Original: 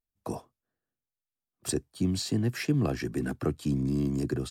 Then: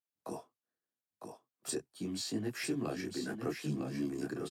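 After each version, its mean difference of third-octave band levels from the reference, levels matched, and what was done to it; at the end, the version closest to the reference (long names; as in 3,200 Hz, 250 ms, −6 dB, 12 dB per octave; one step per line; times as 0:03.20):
6.0 dB: Bessel high-pass filter 260 Hz, order 2
single-tap delay 954 ms −6.5 dB
micro pitch shift up and down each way 28 cents
level −1.5 dB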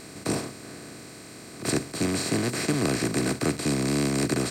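12.0 dB: compressor on every frequency bin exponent 0.2
low-shelf EQ 160 Hz −8.5 dB
expander for the loud parts 1.5 to 1, over −34 dBFS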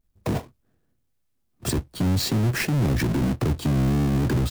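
7.5 dB: each half-wave held at its own peak
low-shelf EQ 390 Hz +12 dB
brickwall limiter −22.5 dBFS, peak gain reduction 18.5 dB
level +6 dB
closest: first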